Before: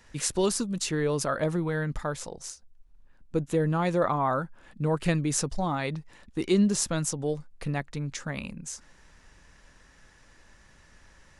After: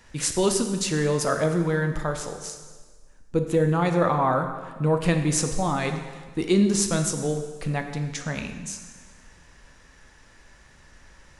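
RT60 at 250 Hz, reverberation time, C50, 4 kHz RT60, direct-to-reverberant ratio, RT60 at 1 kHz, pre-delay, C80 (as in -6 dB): 1.5 s, 1.5 s, 7.5 dB, 1.4 s, 5.5 dB, 1.5 s, 6 ms, 9.0 dB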